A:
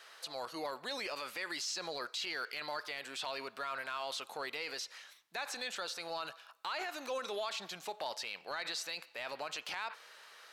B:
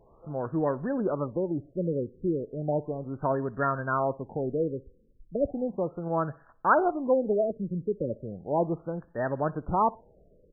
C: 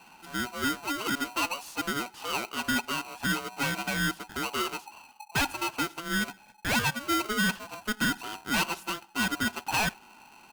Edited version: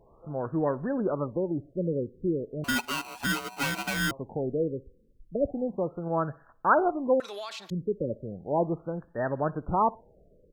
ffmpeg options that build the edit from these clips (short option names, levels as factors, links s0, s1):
-filter_complex "[1:a]asplit=3[s0][s1][s2];[s0]atrim=end=2.642[s3];[2:a]atrim=start=2.638:end=4.112[s4];[s1]atrim=start=4.108:end=7.202[s5];[0:a]atrim=start=7.198:end=7.702[s6];[s2]atrim=start=7.698[s7];[s3][s4]acrossfade=d=0.004:c1=hsin:c2=hsin[s8];[s8][s5]acrossfade=d=0.004:c1=hsin:c2=hsin[s9];[s9][s6]acrossfade=d=0.004:c1=hsin:c2=hsin[s10];[s10][s7]acrossfade=d=0.004:c1=hsin:c2=hsin"